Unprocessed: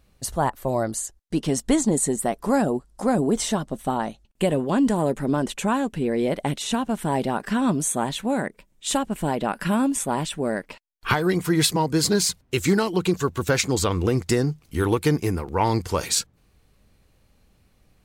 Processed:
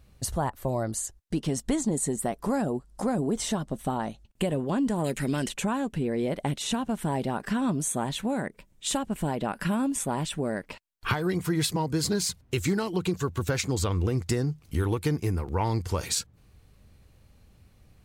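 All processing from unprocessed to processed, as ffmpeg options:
ffmpeg -i in.wav -filter_complex "[0:a]asettb=1/sr,asplit=3[link_01][link_02][link_03];[link_01]atrim=end=5.044[link_04];[link_02]atrim=start=5.04:end=5.49,asetpts=PTS-STARTPTS,afade=type=in:duration=0.004:curve=qsin,afade=type=out:start_time=0.446:duration=0.004:curve=qsin,highshelf=frequency=1600:width_type=q:width=1.5:gain=12,bandreject=frequency=3500:width=18[link_05];[link_03]atrim=start=5.486[link_06];[link_04][link_05]acrossfade=duration=0.004:curve1=hsin:curve2=qsin[link_07];[link_07][link_06]acrossfade=duration=0.004:curve1=qsin:curve2=hsin,equalizer=frequency=87:width=0.9:gain=7.5,acompressor=threshold=-29dB:ratio=2" out.wav

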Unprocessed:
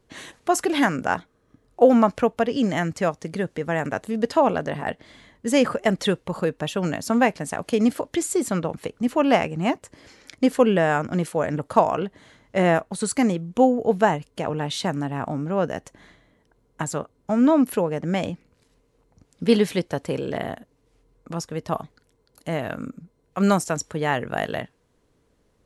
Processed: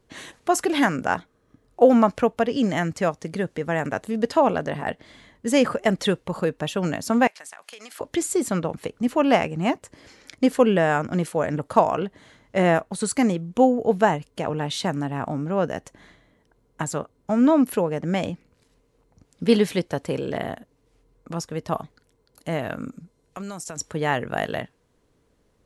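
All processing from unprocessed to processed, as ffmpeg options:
ffmpeg -i in.wav -filter_complex "[0:a]asettb=1/sr,asplit=3[link_01][link_02][link_03];[link_01]atrim=end=7.274[link_04];[link_02]atrim=start=7.27:end=8.01,asetpts=PTS-STARTPTS,afade=type=in:duration=0.004:curve=qsin,afade=type=out:start_time=0.736:duration=0.004:curve=qsin,highpass=1200,acompressor=threshold=-36dB:ratio=12:attack=3.2:release=140:knee=1:detection=peak[link_05];[link_03]atrim=start=8.006[link_06];[link_04][link_05]acrossfade=duration=0.004:curve1=hsin:curve2=qsin[link_07];[link_07][link_06]acrossfade=duration=0.004:curve1=qsin:curve2=hsin,asettb=1/sr,asplit=3[link_08][link_09][link_10];[link_08]atrim=end=22.884[link_11];[link_09]atrim=start=22.88:end=23.79,asetpts=PTS-STARTPTS,afade=type=in:duration=0.004:curve=qsin,afade=type=out:start_time=0.906:duration=0.004:curve=qsin,lowpass=10000,highshelf=frequency=3900:gain=10,acompressor=threshold=-30dB:ratio=16:attack=3.2:release=140:knee=1:detection=peak[link_12];[link_10]atrim=start=23.786[link_13];[link_11][link_12]acrossfade=duration=0.004:curve1=hsin:curve2=qsin[link_14];[link_14][link_13]acrossfade=duration=0.004:curve1=qsin:curve2=hsin" out.wav

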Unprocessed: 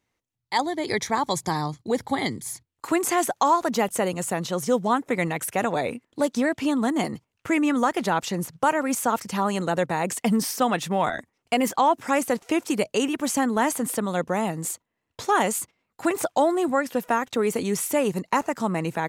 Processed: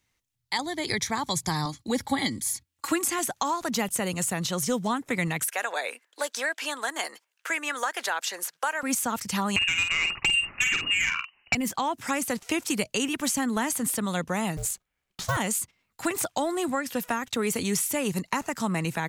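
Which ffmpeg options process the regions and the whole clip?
ffmpeg -i in.wav -filter_complex "[0:a]asettb=1/sr,asplit=3[link_01][link_02][link_03];[link_01]atrim=end=1.654[link_04];[link_02]atrim=start=1.65:end=3.19,asetpts=PTS-STARTPTS,afade=type=in:duration=0.004:curve=qsin,afade=type=out:start_time=1.536:duration=0.004:curve=qsin,highpass=58,aecho=1:1:3.6:0.56,atrim=end_sample=67914[link_05];[link_03]atrim=start=3.186[link_06];[link_04][link_05]acrossfade=duration=0.004:curve1=hsin:curve2=qsin[link_07];[link_07][link_06]acrossfade=duration=0.004:curve1=qsin:curve2=hsin,asettb=1/sr,asplit=3[link_08][link_09][link_10];[link_08]atrim=end=5.484[link_11];[link_09]atrim=start=5.48:end=8.83,asetpts=PTS-STARTPTS,afade=type=in:duration=0.004:curve=qsin,afade=type=out:start_time=3.346:duration=0.004:curve=qsin,highpass=frequency=470:width=0.5412,highpass=frequency=470:width=1.3066,equalizer=frequency=1600:width_type=o:width=0.24:gain=8[link_12];[link_10]atrim=start=8.826[link_13];[link_11][link_12]acrossfade=duration=0.004:curve1=hsin:curve2=qsin[link_14];[link_14][link_13]acrossfade=duration=0.004:curve1=qsin:curve2=hsin,asettb=1/sr,asplit=3[link_15][link_16][link_17];[link_15]atrim=end=9.564[link_18];[link_16]atrim=start=9.56:end=11.55,asetpts=PTS-STARTPTS,afade=type=in:duration=0.004:curve=qsin,afade=type=out:start_time=1.986:duration=0.004:curve=qsin,lowpass=frequency=2600:width_type=q:width=0.5098,lowpass=frequency=2600:width_type=q:width=0.6013,lowpass=frequency=2600:width_type=q:width=0.9,lowpass=frequency=2600:width_type=q:width=2.563,afreqshift=-3000,aeval=exprs='0.355*sin(PI/2*2.24*val(0)/0.355)':channel_layout=same,asplit=2[link_19][link_20];[link_20]adelay=49,volume=-6.5dB[link_21];[link_19][link_21]amix=inputs=2:normalize=0,atrim=end_sample=87759[link_22];[link_17]atrim=start=11.546[link_23];[link_18][link_22]acrossfade=duration=0.004:curve1=hsin:curve2=qsin[link_24];[link_24][link_23]acrossfade=duration=0.004:curve1=qsin:curve2=hsin,asettb=1/sr,asplit=3[link_25][link_26][link_27];[link_25]atrim=end=14.574[link_28];[link_26]atrim=start=14.57:end=15.37,asetpts=PTS-STARTPTS,afade=type=in:duration=0.004:curve=qsin,afade=type=out:start_time=0.796:duration=0.004:curve=qsin,acrusher=bits=6:mode=log:mix=0:aa=0.000001,aeval=exprs='val(0)*sin(2*PI*280*n/s)':channel_layout=same[link_29];[link_27]atrim=start=15.366[link_30];[link_28][link_29]acrossfade=duration=0.004:curve1=hsin:curve2=qsin[link_31];[link_31][link_30]acrossfade=duration=0.004:curve1=qsin:curve2=hsin,equalizer=frequency=460:width=0.38:gain=-11.5,acrossover=split=320[link_32][link_33];[link_33]acompressor=threshold=-32dB:ratio=4[link_34];[link_32][link_34]amix=inputs=2:normalize=0,volume=6.5dB" out.wav

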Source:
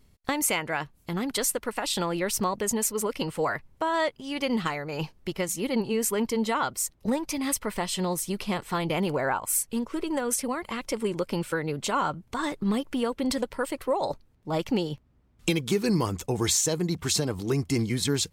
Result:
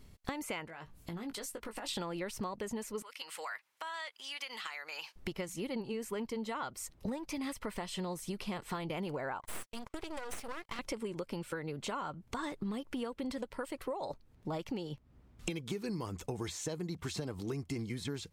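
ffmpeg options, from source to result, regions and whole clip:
ffmpeg -i in.wav -filter_complex "[0:a]asettb=1/sr,asplit=3[link_01][link_02][link_03];[link_01]atrim=end=0.654[link_04];[link_02]atrim=start=0.65:end=1.89,asetpts=PTS-STARTPTS,afade=type=in:duration=0.004:curve=qsin,afade=type=out:start_time=1.236:duration=0.004:curve=qsin,acompressor=threshold=-42dB:ratio=6:attack=3.2:release=140:knee=1:detection=peak,asplit=2[link_05][link_06];[link_06]adelay=18,volume=-8dB[link_07];[link_05][link_07]amix=inputs=2:normalize=0,atrim=end_sample=54684[link_08];[link_03]atrim=start=1.886[link_09];[link_04][link_08]acrossfade=duration=0.004:curve1=hsin:curve2=qsin[link_10];[link_10][link_09]acrossfade=duration=0.004:curve1=qsin:curve2=hsin,asettb=1/sr,asplit=3[link_11][link_12][link_13];[link_11]atrim=end=3.024[link_14];[link_12]atrim=start=3.02:end=5.16,asetpts=PTS-STARTPTS,afade=type=in:duration=0.004:curve=qsin,afade=type=out:start_time=2.136:duration=0.004:curve=qsin,highpass=1500,acompressor=threshold=-45dB:ratio=2:attack=3.2:release=140:knee=1:detection=peak[link_15];[link_13]atrim=start=5.156[link_16];[link_14][link_15]acrossfade=duration=0.004:curve1=hsin:curve2=qsin[link_17];[link_17][link_16]acrossfade=duration=0.004:curve1=qsin:curve2=hsin,asettb=1/sr,asplit=3[link_18][link_19][link_20];[link_18]atrim=end=9.414[link_21];[link_19]atrim=start=9.41:end=10.79,asetpts=PTS-STARTPTS,afade=type=in:duration=0.004:curve=qsin,afade=type=out:start_time=1.376:duration=0.004:curve=qsin,agate=range=-33dB:threshold=-39dB:ratio=16:release=100:detection=peak,highpass=frequency=650:poles=1,aeval=exprs='max(val(0),0)':channel_layout=same[link_22];[link_20]atrim=start=10.786[link_23];[link_21][link_22]acrossfade=duration=0.004:curve1=hsin:curve2=qsin[link_24];[link_24][link_23]acrossfade=duration=0.004:curve1=qsin:curve2=hsin,acrossover=split=3100[link_25][link_26];[link_26]acompressor=threshold=-34dB:ratio=4:attack=1:release=60[link_27];[link_25][link_27]amix=inputs=2:normalize=0,highshelf=frequency=9100:gain=-3.5,acompressor=threshold=-41dB:ratio=5,volume=3.5dB" out.wav

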